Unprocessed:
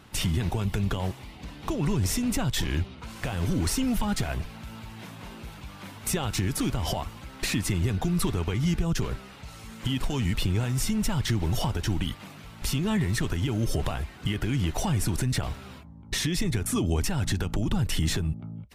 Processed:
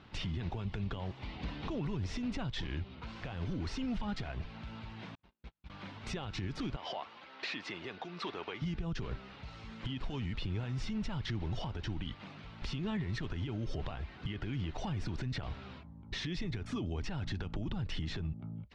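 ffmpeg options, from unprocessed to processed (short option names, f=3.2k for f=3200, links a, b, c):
-filter_complex "[0:a]asettb=1/sr,asplit=3[a][b][c];[a]atrim=end=1.224[d];[b]atrim=start=1.22:end=1.87,asetpts=PTS-STARTPTS,afade=t=in:d=0.004:c=qsin,afade=t=out:st=0.646:d=0.004:c=qsin,acontrast=28[e];[c]atrim=start=1.866[f];[d][e]acrossfade=d=0.004:c1=hsin:c2=qsin[g];[g][f]acrossfade=d=0.004:c1=qsin:c2=hsin,asettb=1/sr,asplit=3[h][i][j];[h]atrim=end=5.154[k];[i]atrim=start=5.15:end=5.7,asetpts=PTS-STARTPTS,afade=t=in:d=0.004:c=qsin,afade=t=out:st=0.546:d=0.004:c=qsin,agate=range=-47dB:threshold=-38dB:ratio=16:release=100:detection=peak[l];[j]atrim=start=5.696[m];[k][l]acrossfade=d=0.004:c1=hsin:c2=qsin[n];[n][m]acrossfade=d=0.004:c1=qsin:c2=hsin,asettb=1/sr,asplit=3[o][p][q];[o]atrim=end=6.764[r];[p]atrim=start=6.76:end=8.62,asetpts=PTS-STARTPTS,afade=t=in:d=0.004:c=qsin,afade=t=out:st=1.856:d=0.004:c=qsin,highpass=470,lowpass=5.6k[s];[q]atrim=start=8.616[t];[r][s]acrossfade=d=0.004:c1=hsin:c2=qsin[u];[u][t]acrossfade=d=0.004:c1=qsin:c2=hsin,lowpass=f=4.6k:w=0.5412,lowpass=f=4.6k:w=1.3066,alimiter=level_in=0.5dB:limit=-24dB:level=0:latency=1:release=178,volume=-0.5dB,volume=-4.5dB"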